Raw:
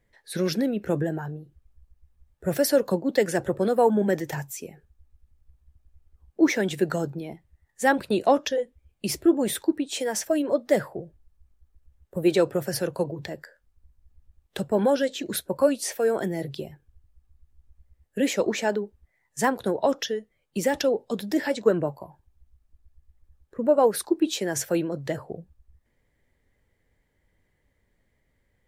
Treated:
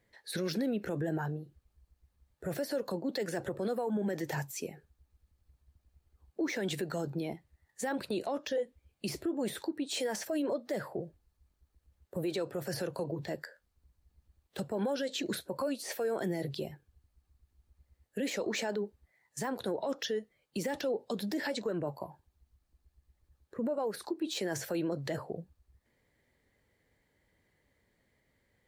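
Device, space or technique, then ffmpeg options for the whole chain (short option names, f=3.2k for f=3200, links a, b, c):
broadcast voice chain: -af "highpass=f=120:p=1,deesser=0.7,acompressor=threshold=-26dB:ratio=4,equalizer=f=4.3k:t=o:w=0.27:g=5,alimiter=level_in=1.5dB:limit=-24dB:level=0:latency=1:release=32,volume=-1.5dB"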